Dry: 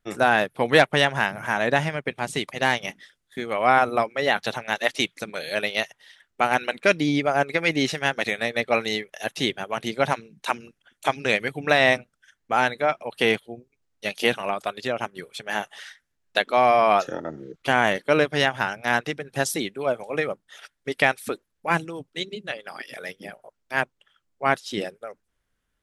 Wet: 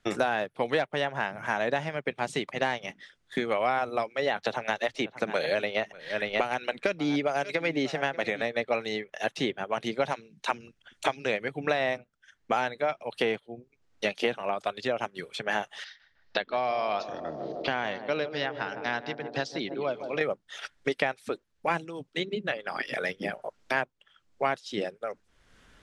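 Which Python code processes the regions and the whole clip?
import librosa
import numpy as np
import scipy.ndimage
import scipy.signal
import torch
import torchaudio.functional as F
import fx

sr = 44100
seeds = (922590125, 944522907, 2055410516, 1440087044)

y = fx.chain(x, sr, fx.echo_single(ms=587, db=-19.5),
    fx.band_squash(depth_pct=100), at=(4.45, 8.42))
y = fx.chain(y, sr, fx.ladder_lowpass(hz=5300.0, resonance_pct=55),
    fx.echo_banded(ms=155, feedback_pct=72, hz=390.0, wet_db=-8.5), at=(15.84, 20.21))
y = scipy.signal.sosfilt(scipy.signal.butter(2, 6600.0, 'lowpass', fs=sr, output='sos'), y)
y = fx.dynamic_eq(y, sr, hz=570.0, q=0.77, threshold_db=-30.0, ratio=4.0, max_db=5)
y = fx.band_squash(y, sr, depth_pct=100)
y = y * librosa.db_to_amplitude(-8.5)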